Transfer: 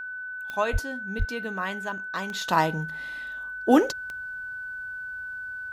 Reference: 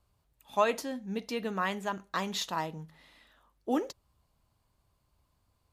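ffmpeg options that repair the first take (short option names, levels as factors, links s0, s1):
-filter_complex "[0:a]adeclick=t=4,bandreject=f=1500:w=30,asplit=3[s0][s1][s2];[s0]afade=t=out:st=0.72:d=0.02[s3];[s1]highpass=f=140:w=0.5412,highpass=f=140:w=1.3066,afade=t=in:st=0.72:d=0.02,afade=t=out:st=0.84:d=0.02[s4];[s2]afade=t=in:st=0.84:d=0.02[s5];[s3][s4][s5]amix=inputs=3:normalize=0,asplit=3[s6][s7][s8];[s6]afade=t=out:st=1.18:d=0.02[s9];[s7]highpass=f=140:w=0.5412,highpass=f=140:w=1.3066,afade=t=in:st=1.18:d=0.02,afade=t=out:st=1.3:d=0.02[s10];[s8]afade=t=in:st=1.3:d=0.02[s11];[s9][s10][s11]amix=inputs=3:normalize=0,asetnsamples=n=441:p=0,asendcmd='2.48 volume volume -11.5dB',volume=1"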